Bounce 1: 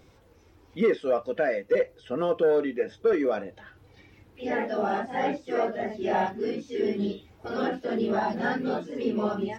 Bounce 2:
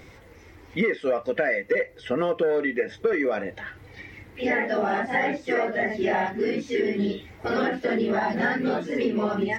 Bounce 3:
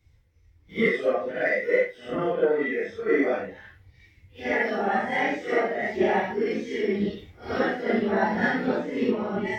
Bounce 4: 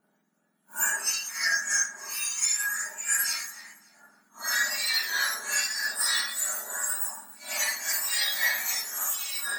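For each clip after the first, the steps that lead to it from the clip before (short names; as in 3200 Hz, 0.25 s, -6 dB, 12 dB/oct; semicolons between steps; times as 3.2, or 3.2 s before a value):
bell 2000 Hz +12.5 dB 0.35 oct; compressor 6:1, threshold -29 dBFS, peak gain reduction 12 dB; gain +8 dB
phase scrambler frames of 0.2 s; three-band expander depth 100%
spectrum mirrored in octaves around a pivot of 1800 Hz; notch comb 520 Hz; echo with dull and thin repeats by turns 0.14 s, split 1700 Hz, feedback 52%, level -13 dB; gain +4 dB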